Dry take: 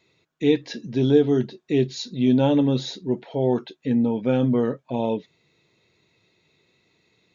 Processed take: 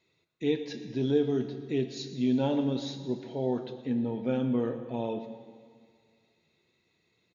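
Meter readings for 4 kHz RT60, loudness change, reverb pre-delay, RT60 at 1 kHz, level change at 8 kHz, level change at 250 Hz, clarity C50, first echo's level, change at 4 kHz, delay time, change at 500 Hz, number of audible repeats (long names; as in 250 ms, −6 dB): 1.9 s, −8.0 dB, 4 ms, 2.0 s, can't be measured, −8.0 dB, 9.0 dB, −17.0 dB, −8.0 dB, 121 ms, −8.0 dB, 1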